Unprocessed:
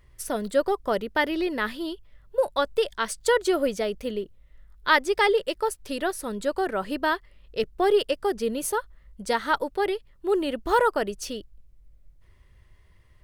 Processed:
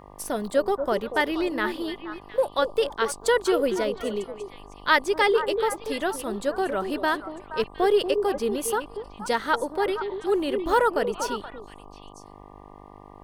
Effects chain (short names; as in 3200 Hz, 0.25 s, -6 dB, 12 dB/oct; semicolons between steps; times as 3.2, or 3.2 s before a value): buzz 50 Hz, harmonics 24, -48 dBFS 0 dB/oct; delay with a stepping band-pass 0.237 s, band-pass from 410 Hz, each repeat 1.4 oct, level -5.5 dB